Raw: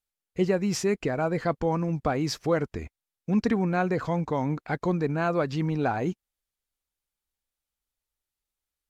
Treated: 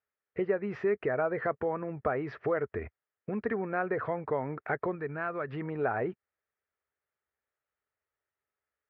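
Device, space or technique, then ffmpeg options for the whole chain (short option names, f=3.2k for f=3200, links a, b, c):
bass amplifier: -filter_complex "[0:a]acompressor=threshold=-32dB:ratio=3,highpass=f=75:w=0.5412,highpass=f=75:w=1.3066,equalizer=f=170:t=q:w=4:g=-8,equalizer=f=280:t=q:w=4:g=-5,equalizer=f=420:t=q:w=4:g=8,equalizer=f=620:t=q:w=4:g=6,equalizer=f=1.3k:t=q:w=4:g=7,equalizer=f=1.8k:t=q:w=4:g=8,lowpass=f=2.4k:w=0.5412,lowpass=f=2.4k:w=1.3066,asettb=1/sr,asplit=3[a][b][c];[a]atrim=end=4.954[d];[b]atrim=start=4.95:end=5.48,asetpts=PTS-STARTPTS,afade=t=in:d=0.004:c=qsin,afade=t=out:st=0.526:d=0.004:c=qsin,equalizer=f=560:w=0.7:g=-7[e];[c]atrim=start=5.476[f];[d][e]acrossfade=d=0.004:c1=hsin:c2=qsin[g];[g][f]acrossfade=d=0.004:c1=qsin:c2=hsin"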